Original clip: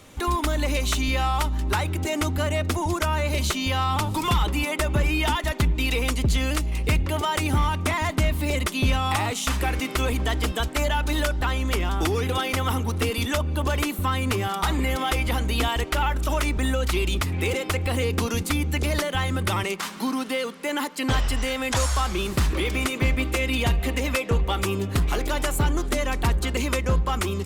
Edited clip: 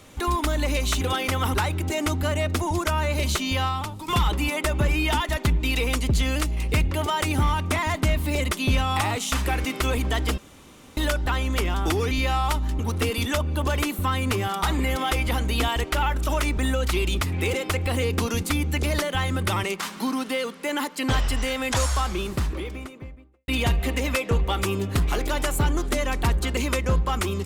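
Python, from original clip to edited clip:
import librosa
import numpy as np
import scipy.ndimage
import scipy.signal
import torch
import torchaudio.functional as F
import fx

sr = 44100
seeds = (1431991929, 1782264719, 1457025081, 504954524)

y = fx.studio_fade_out(x, sr, start_s=21.79, length_s=1.69)
y = fx.edit(y, sr, fx.swap(start_s=1.01, length_s=0.68, other_s=12.26, other_length_s=0.53),
    fx.fade_out_to(start_s=3.78, length_s=0.45, curve='qua', floor_db=-11.5),
    fx.room_tone_fill(start_s=10.53, length_s=0.59), tone=tone)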